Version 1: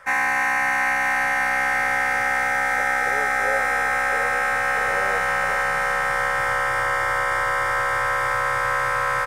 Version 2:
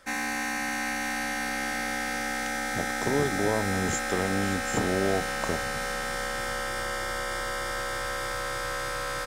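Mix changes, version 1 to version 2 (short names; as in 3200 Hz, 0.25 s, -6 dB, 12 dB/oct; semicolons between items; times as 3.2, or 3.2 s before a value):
speech: remove vowel filter e; master: add ten-band EQ 125 Hz -9 dB, 250 Hz +10 dB, 500 Hz -4 dB, 1000 Hz -12 dB, 2000 Hz -10 dB, 4000 Hz +6 dB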